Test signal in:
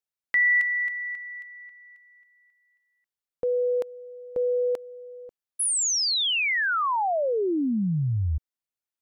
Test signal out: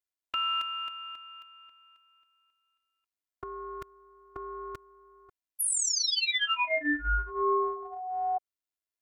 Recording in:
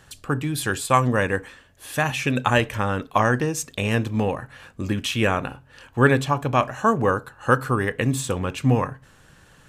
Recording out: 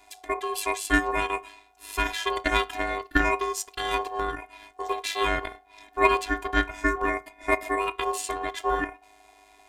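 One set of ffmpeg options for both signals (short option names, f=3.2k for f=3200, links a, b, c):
-af "afftfilt=real='hypot(re,im)*cos(PI*b)':imag='0':win_size=512:overlap=0.75,aeval=exprs='val(0)*sin(2*PI*740*n/s)':c=same,aeval=exprs='0.562*(cos(1*acos(clip(val(0)/0.562,-1,1)))-cos(1*PI/2))+0.0224*(cos(3*acos(clip(val(0)/0.562,-1,1)))-cos(3*PI/2))+0.00355*(cos(6*acos(clip(val(0)/0.562,-1,1)))-cos(6*PI/2))+0.00447*(cos(8*acos(clip(val(0)/0.562,-1,1)))-cos(8*PI/2))':c=same,volume=4dB"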